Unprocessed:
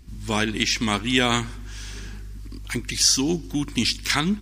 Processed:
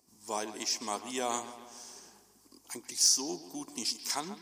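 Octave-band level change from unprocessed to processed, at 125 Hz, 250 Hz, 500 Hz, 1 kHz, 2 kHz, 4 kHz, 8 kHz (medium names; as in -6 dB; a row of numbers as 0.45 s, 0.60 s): -27.5 dB, -17.5 dB, -9.5 dB, -8.0 dB, -19.5 dB, -10.5 dB, -5.0 dB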